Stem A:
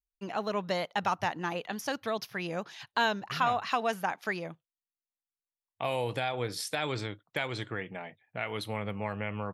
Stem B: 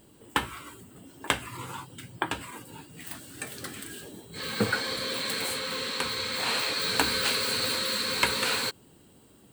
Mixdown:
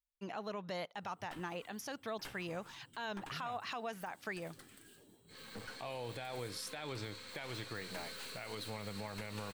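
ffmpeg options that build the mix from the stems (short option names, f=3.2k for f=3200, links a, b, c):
-filter_complex "[0:a]volume=-5.5dB[a];[1:a]aeval=exprs='(tanh(22.4*val(0)+0.65)-tanh(0.65))/22.4':c=same,adelay=950,volume=-15.5dB[b];[a][b]amix=inputs=2:normalize=0,alimiter=level_in=8dB:limit=-24dB:level=0:latency=1:release=107,volume=-8dB"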